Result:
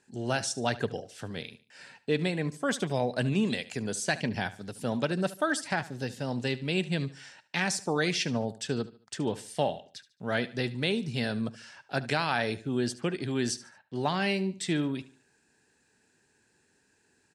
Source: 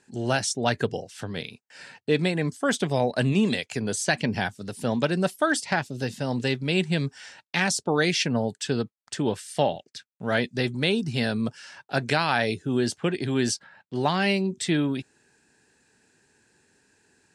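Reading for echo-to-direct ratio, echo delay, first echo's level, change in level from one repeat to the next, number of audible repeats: -16.5 dB, 73 ms, -17.0 dB, -9.0 dB, 3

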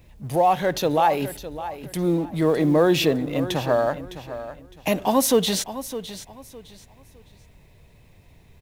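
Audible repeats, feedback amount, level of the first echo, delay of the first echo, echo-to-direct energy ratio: 2, 27%, -13.0 dB, 609 ms, -12.5 dB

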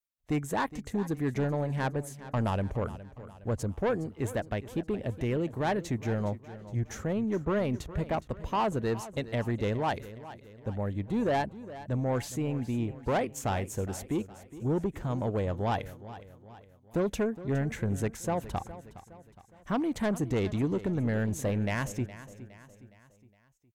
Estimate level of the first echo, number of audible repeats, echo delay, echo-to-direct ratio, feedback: -15.5 dB, 3, 414 ms, -14.5 dB, 47%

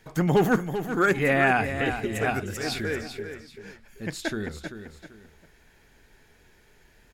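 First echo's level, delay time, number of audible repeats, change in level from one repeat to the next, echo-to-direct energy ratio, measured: -9.5 dB, 389 ms, 2, -10.0 dB, -9.0 dB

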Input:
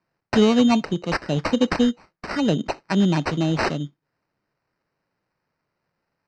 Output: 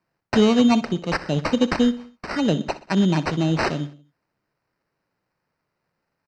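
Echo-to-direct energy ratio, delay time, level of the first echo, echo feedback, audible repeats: -15.5 dB, 62 ms, -16.5 dB, 49%, 3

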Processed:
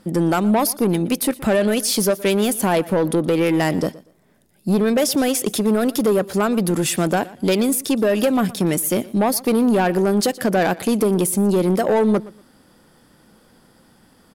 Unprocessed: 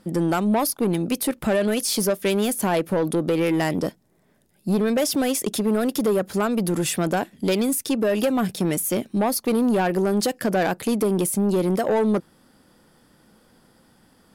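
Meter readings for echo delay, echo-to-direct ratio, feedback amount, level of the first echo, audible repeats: 119 ms, -20.0 dB, 23%, -20.0 dB, 2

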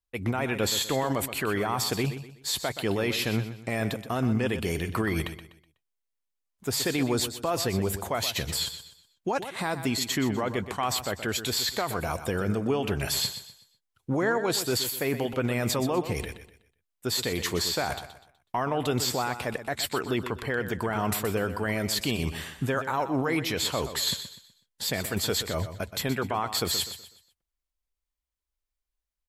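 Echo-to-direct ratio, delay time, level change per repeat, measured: -10.5 dB, 124 ms, -9.5 dB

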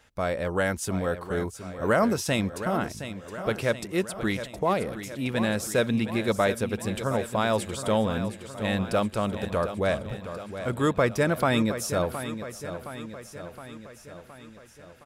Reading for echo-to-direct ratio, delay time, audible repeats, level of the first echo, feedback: -9.0 dB, 717 ms, 6, -11.0 dB, 59%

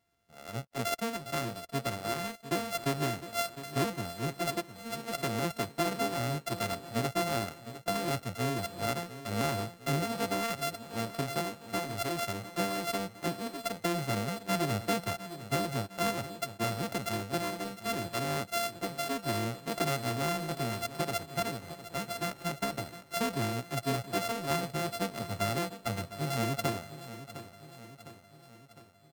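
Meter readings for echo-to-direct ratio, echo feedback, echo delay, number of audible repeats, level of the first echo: -12.0 dB, 55%, 707 ms, 5, -13.5 dB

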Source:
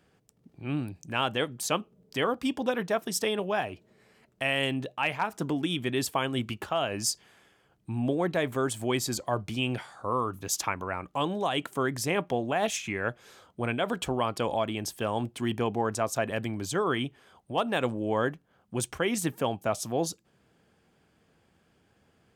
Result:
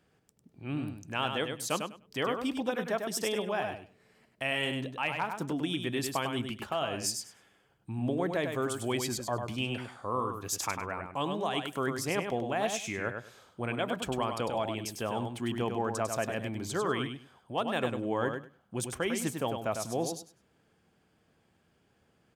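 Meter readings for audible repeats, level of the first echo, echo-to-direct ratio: 2, -6.0 dB, -6.0 dB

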